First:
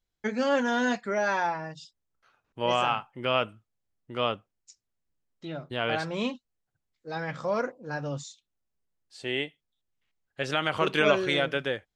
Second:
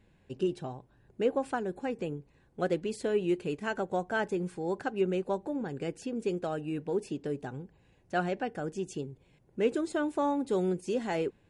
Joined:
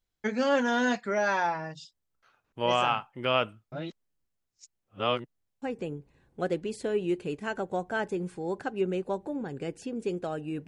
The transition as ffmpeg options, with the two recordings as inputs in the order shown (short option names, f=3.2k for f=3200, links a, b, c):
-filter_complex "[0:a]apad=whole_dur=10.67,atrim=end=10.67,asplit=2[a][b];[a]atrim=end=3.722[c];[b]atrim=start=3.718:end=5.622,asetpts=PTS-STARTPTS,areverse[d];[1:a]atrim=start=1.818:end=6.87[e];[c][d]acrossfade=d=0.004:c1=hsin:c2=hsin[f];[f][e]acrossfade=d=0.004:c1=hsin:c2=hsin"